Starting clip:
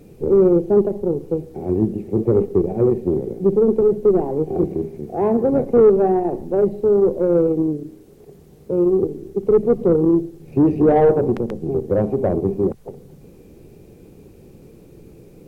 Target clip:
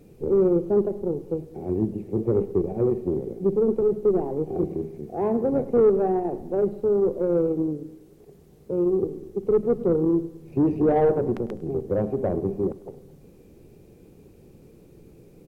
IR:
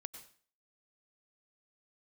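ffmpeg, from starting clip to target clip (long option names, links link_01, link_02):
-af "aecho=1:1:102|204|306|408|510:0.1|0.059|0.0348|0.0205|0.0121,volume=-6dB"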